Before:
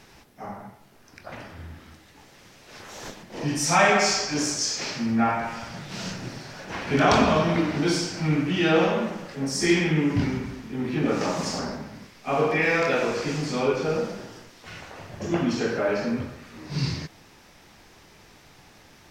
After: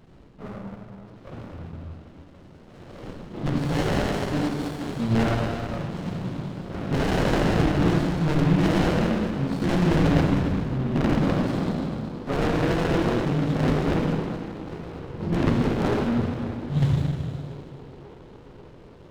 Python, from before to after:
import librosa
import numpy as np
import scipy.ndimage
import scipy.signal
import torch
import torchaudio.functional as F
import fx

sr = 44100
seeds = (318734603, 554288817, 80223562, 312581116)

y = fx.peak_eq(x, sr, hz=2300.0, db=-12.0, octaves=0.51)
y = (np.mod(10.0 ** (17.0 / 20.0) * y + 1.0, 2.0) - 1.0) / 10.0 ** (17.0 / 20.0)
y = fx.low_shelf(y, sr, hz=160.0, db=5.5)
y = fx.echo_banded(y, sr, ms=535, feedback_pct=78, hz=530.0, wet_db=-15)
y = fx.rev_plate(y, sr, seeds[0], rt60_s=2.2, hf_ratio=1.0, predelay_ms=0, drr_db=-1.5)
y = fx.formant_shift(y, sr, semitones=-4)
y = scipy.signal.sosfilt(scipy.signal.butter(4, 3400.0, 'lowpass', fs=sr, output='sos'), y)
y = fx.running_max(y, sr, window=33)